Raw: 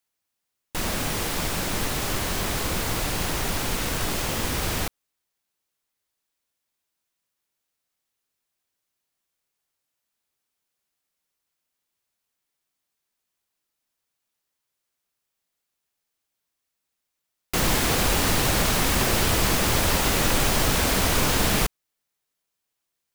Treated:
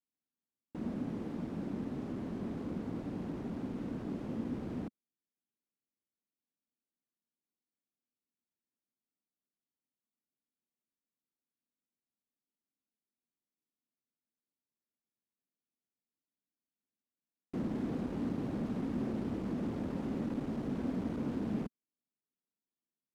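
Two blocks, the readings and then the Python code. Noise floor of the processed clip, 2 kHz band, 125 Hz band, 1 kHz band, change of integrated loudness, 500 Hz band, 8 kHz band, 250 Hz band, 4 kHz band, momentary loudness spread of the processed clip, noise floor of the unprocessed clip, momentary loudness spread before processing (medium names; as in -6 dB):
under -85 dBFS, -28.5 dB, -13.5 dB, -22.0 dB, -15.0 dB, -14.0 dB, under -40 dB, -5.0 dB, under -30 dB, 4 LU, -82 dBFS, 5 LU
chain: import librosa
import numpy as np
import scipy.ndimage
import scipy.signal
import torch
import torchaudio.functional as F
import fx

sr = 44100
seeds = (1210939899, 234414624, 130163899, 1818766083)

y = np.clip(x, -10.0 ** (-21.0 / 20.0), 10.0 ** (-21.0 / 20.0))
y = fx.bandpass_q(y, sr, hz=240.0, q=2.7)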